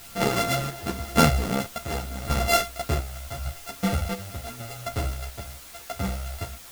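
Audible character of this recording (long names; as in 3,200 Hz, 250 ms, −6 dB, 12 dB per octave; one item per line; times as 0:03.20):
a buzz of ramps at a fixed pitch in blocks of 64 samples
chopped level 0.87 Hz, depth 65%, duty 60%
a quantiser's noise floor 8 bits, dither triangular
a shimmering, thickened sound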